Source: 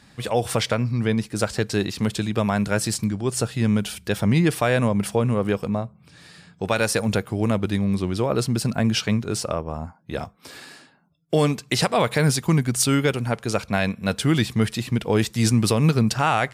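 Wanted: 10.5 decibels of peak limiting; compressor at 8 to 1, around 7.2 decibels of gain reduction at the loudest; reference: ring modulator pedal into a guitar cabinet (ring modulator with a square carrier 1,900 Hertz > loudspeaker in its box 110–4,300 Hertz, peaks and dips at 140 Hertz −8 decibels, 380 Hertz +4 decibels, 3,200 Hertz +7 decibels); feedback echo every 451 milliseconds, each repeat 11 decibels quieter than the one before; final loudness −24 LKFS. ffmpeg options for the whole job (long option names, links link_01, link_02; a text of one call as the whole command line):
ffmpeg -i in.wav -af "acompressor=threshold=-22dB:ratio=8,alimiter=limit=-20.5dB:level=0:latency=1,aecho=1:1:451|902|1353:0.282|0.0789|0.0221,aeval=exprs='val(0)*sgn(sin(2*PI*1900*n/s))':channel_layout=same,highpass=110,equalizer=frequency=140:width_type=q:width=4:gain=-8,equalizer=frequency=380:width_type=q:width=4:gain=4,equalizer=frequency=3200:width_type=q:width=4:gain=7,lowpass=frequency=4300:width=0.5412,lowpass=frequency=4300:width=1.3066,volume=4.5dB" out.wav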